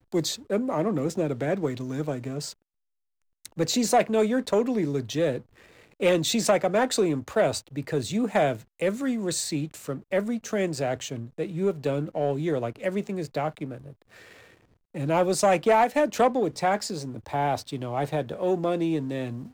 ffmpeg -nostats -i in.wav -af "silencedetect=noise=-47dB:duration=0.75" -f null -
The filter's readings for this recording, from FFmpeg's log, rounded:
silence_start: 2.53
silence_end: 3.45 | silence_duration: 0.92